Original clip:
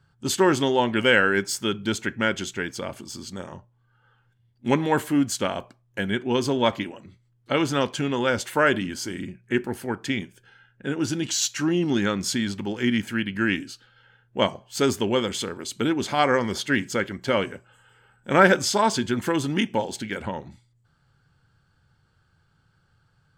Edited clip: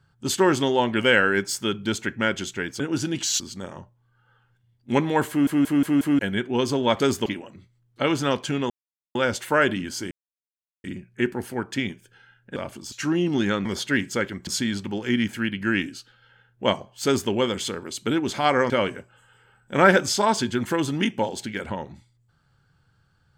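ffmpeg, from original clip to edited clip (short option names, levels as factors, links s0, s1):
-filter_complex "[0:a]asplit=17[s0][s1][s2][s3][s4][s5][s6][s7][s8][s9][s10][s11][s12][s13][s14][s15][s16];[s0]atrim=end=2.802[s17];[s1]atrim=start=10.878:end=11.482[s18];[s2]atrim=start=3.158:end=5.232[s19];[s3]atrim=start=5.048:end=5.232[s20];[s4]atrim=start=5.048:end=5.232[s21];[s5]atrim=start=5.048:end=5.232[s22];[s6]atrim=start=5.048:end=5.232[s23];[s7]atrim=start=5.948:end=6.762[s24];[s8]atrim=start=14.788:end=15.052[s25];[s9]atrim=start=6.758:end=8.2,asetpts=PTS-STARTPTS,afade=t=out:st=1.438:d=0.004:c=hsin,apad=pad_dur=0.45[s26];[s10]atrim=start=8.2:end=9.16,asetpts=PTS-STARTPTS,afade=t=in:d=0.004:c=hsin,afade=t=out:st=0.956:d=0.004:c=hsin,apad=pad_dur=0.73[s27];[s11]atrim=start=9.16:end=10.882,asetpts=PTS-STARTPTS,afade=t=in:d=0.004:c=hsin[s28];[s12]atrim=start=2.798:end=3.162[s29];[s13]atrim=start=11.478:end=12.212[s30];[s14]atrim=start=16.438:end=17.262[s31];[s15]atrim=start=12.208:end=16.442[s32];[s16]atrim=start=17.258[s33];[s17][s18]acrossfade=d=0.004:c1=hsin:c2=hsin[s34];[s34][s19]acrossfade=d=0.004:c1=hsin:c2=hsin[s35];[s35][s20]acrossfade=d=0.004:c1=hsin:c2=hsin[s36];[s36][s21]acrossfade=d=0.004:c1=hsin:c2=hsin[s37];[s37][s22]acrossfade=d=0.004:c1=hsin:c2=hsin[s38];[s38][s23]acrossfade=d=0.004:c1=hsin:c2=hsin[s39];[s39][s24]acrossfade=d=0.004:c1=hsin:c2=hsin[s40];[s40][s25]acrossfade=d=0.004:c1=hsin:c2=hsin[s41];[s26][s27][s28]concat=n=3:v=0:a=1[s42];[s41][s42]acrossfade=d=0.004:c1=hsin:c2=hsin[s43];[s43][s29]acrossfade=d=0.004:c1=hsin:c2=hsin[s44];[s44][s30]acrossfade=d=0.004:c1=hsin:c2=hsin[s45];[s45][s31]acrossfade=d=0.004:c1=hsin:c2=hsin[s46];[s46][s32]acrossfade=d=0.004:c1=hsin:c2=hsin[s47];[s47][s33]acrossfade=d=0.004:c1=hsin:c2=hsin"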